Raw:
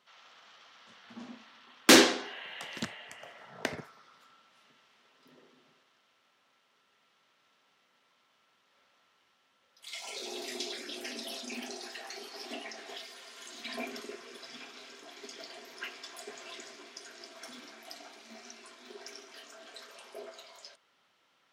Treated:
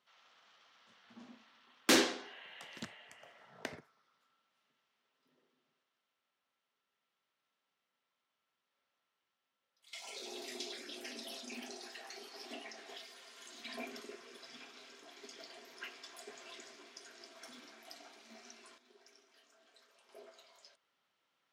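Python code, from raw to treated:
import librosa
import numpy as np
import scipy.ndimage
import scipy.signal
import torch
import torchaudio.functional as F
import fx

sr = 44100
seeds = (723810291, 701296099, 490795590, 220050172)

y = fx.gain(x, sr, db=fx.steps((0.0, -9.0), (3.79, -16.5), (9.93, -6.0), (18.78, -17.0), (20.09, -10.5)))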